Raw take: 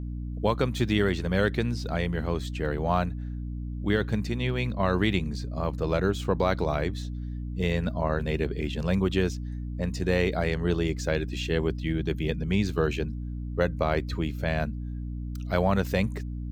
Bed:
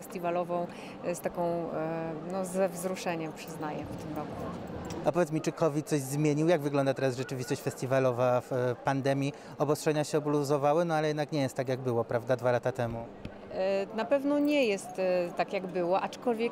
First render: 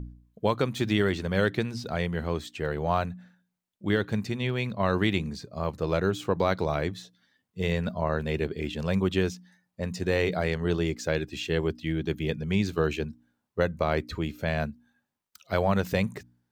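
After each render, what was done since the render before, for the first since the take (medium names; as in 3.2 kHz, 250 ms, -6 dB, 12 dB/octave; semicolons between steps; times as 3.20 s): de-hum 60 Hz, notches 5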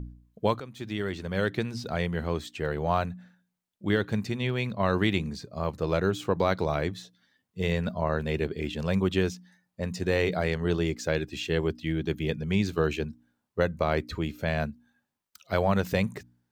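0.60–1.82 s: fade in, from -16 dB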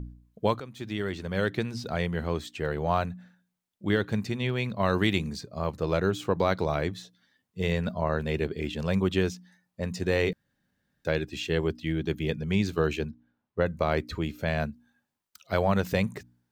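4.76–5.41 s: treble shelf 5 kHz +6 dB; 10.33–11.05 s: room tone; 13.10–13.66 s: distance through air 230 m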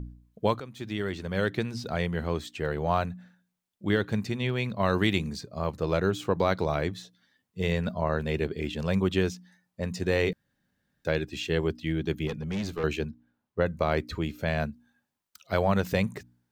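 12.27–12.84 s: valve stage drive 26 dB, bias 0.3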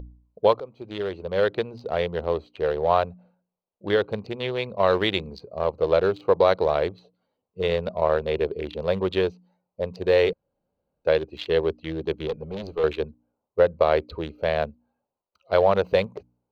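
local Wiener filter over 25 samples; graphic EQ 125/250/500/1000/4000/8000 Hz -6/-7/+11/+4/+9/-10 dB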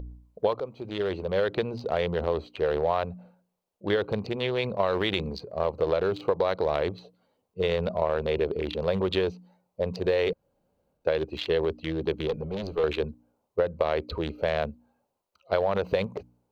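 transient shaper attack +1 dB, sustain +6 dB; compression, threshold -21 dBFS, peak gain reduction 9.5 dB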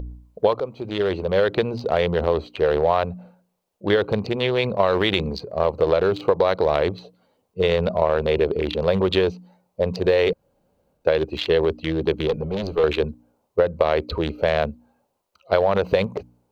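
trim +6.5 dB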